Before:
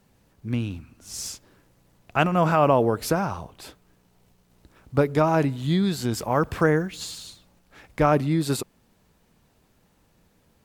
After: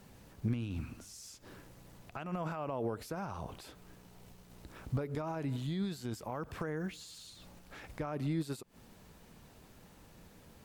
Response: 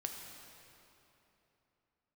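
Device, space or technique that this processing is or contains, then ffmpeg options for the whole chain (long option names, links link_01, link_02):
de-esser from a sidechain: -filter_complex "[0:a]asplit=2[link_01][link_02];[link_02]highpass=frequency=4100:poles=1,apad=whole_len=469465[link_03];[link_01][link_03]sidechaincompress=threshold=-58dB:ratio=4:attack=0.92:release=87,volume=5dB"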